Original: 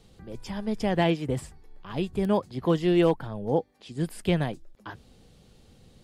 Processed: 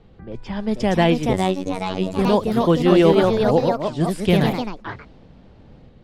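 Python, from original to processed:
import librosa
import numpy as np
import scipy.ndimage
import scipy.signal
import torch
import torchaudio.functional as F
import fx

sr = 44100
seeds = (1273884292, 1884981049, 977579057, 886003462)

y = fx.echo_pitch(x, sr, ms=518, semitones=2, count=3, db_per_echo=-3.0)
y = fx.robotise(y, sr, hz=93.6, at=(1.33, 2.19))
y = fx.env_lowpass(y, sr, base_hz=1900.0, full_db=-22.5)
y = F.gain(torch.from_numpy(y), 6.5).numpy()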